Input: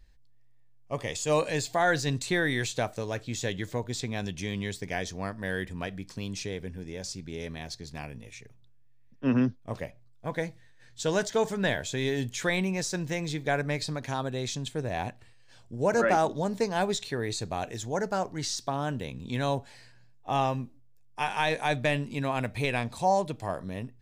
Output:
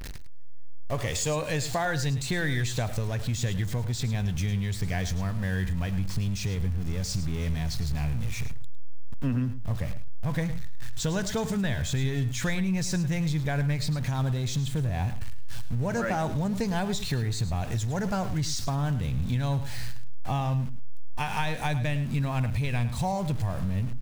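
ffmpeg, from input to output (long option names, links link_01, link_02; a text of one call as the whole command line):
ffmpeg -i in.wav -af "aeval=exprs='val(0)+0.5*0.015*sgn(val(0))':channel_layout=same,asubboost=boost=7:cutoff=140,acompressor=threshold=-29dB:ratio=6,aecho=1:1:106:0.224,volume=4dB" out.wav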